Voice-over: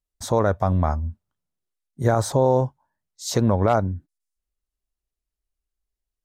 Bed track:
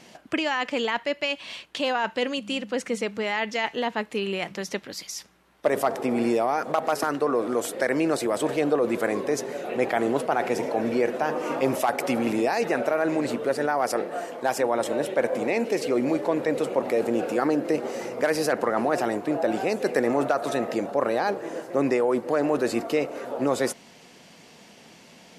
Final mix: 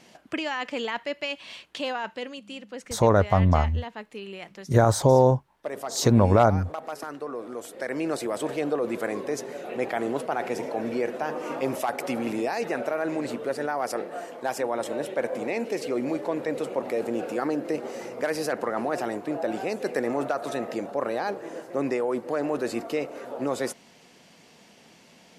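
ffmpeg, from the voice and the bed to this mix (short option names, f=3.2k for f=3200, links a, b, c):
-filter_complex "[0:a]adelay=2700,volume=1dB[a];[1:a]volume=2.5dB,afade=t=out:st=1.83:d=0.5:silence=0.473151,afade=t=in:st=7.69:d=0.42:silence=0.473151[b];[a][b]amix=inputs=2:normalize=0"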